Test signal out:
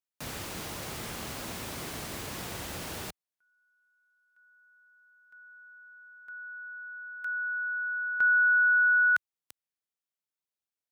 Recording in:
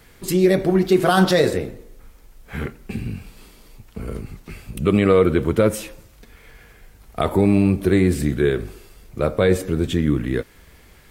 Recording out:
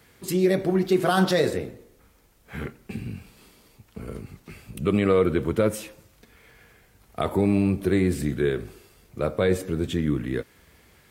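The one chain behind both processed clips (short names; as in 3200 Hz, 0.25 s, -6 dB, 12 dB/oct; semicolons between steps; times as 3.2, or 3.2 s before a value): HPF 71 Hz 12 dB/oct; gain -5 dB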